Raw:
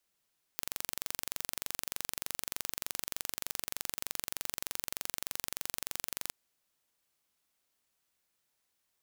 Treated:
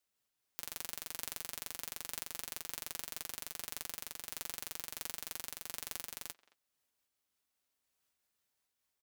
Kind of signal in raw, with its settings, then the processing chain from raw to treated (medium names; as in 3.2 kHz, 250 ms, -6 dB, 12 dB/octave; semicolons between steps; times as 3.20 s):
pulse train 23.3 per s, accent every 0, -7.5 dBFS 5.72 s
comb of notches 170 Hz; speakerphone echo 220 ms, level -20 dB; random flutter of the level, depth 55%